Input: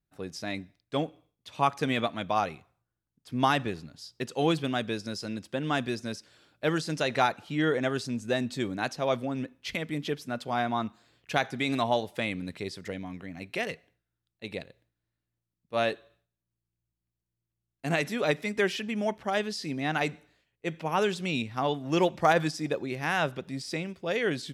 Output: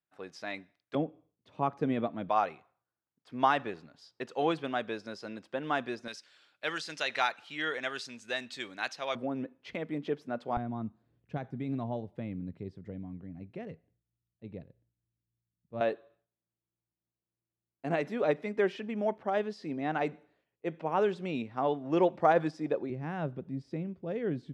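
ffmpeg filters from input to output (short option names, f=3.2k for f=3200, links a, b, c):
-af "asetnsamples=n=441:p=0,asendcmd='0.95 bandpass f 290;2.29 bandpass f 900;6.08 bandpass f 2500;9.15 bandpass f 510;10.57 bandpass f 110;15.81 bandpass f 500;22.9 bandpass f 170',bandpass=f=1.2k:t=q:w=0.63:csg=0"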